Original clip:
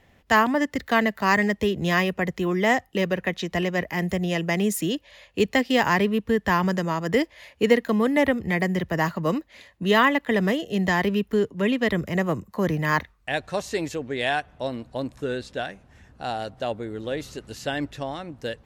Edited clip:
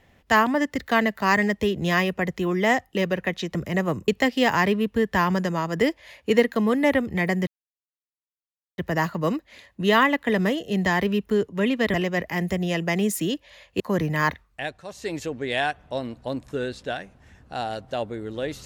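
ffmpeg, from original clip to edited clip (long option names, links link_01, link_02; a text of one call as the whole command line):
ffmpeg -i in.wav -filter_complex "[0:a]asplit=7[link_01][link_02][link_03][link_04][link_05][link_06][link_07];[link_01]atrim=end=3.552[link_08];[link_02]atrim=start=11.958:end=12.492[link_09];[link_03]atrim=start=5.408:end=8.8,asetpts=PTS-STARTPTS,afade=type=out:start_time=3.388:duration=0.004:curve=hsin,apad=pad_dur=1.31[link_10];[link_04]atrim=start=8.8:end=11.962,asetpts=PTS-STARTPTS,afade=type=in:duration=0.004:curve=hsin[link_11];[link_05]atrim=start=3.548:end=5.412[link_12];[link_06]atrim=start=12.488:end=13.54,asetpts=PTS-STARTPTS,afade=type=out:start_time=0.652:duration=0.4:silence=0.237137[link_13];[link_07]atrim=start=13.54,asetpts=PTS-STARTPTS,afade=type=in:duration=0.4:silence=0.237137[link_14];[link_08][link_09]acrossfade=duration=0.004:curve1=hsin:curve2=hsin[link_15];[link_10][link_11]concat=n=2:v=0:a=1[link_16];[link_15][link_16]acrossfade=duration=0.004:curve1=hsin:curve2=hsin[link_17];[link_17][link_12]acrossfade=duration=0.004:curve1=hsin:curve2=hsin[link_18];[link_13][link_14]concat=n=2:v=0:a=1[link_19];[link_18][link_19]acrossfade=duration=0.004:curve1=hsin:curve2=hsin" out.wav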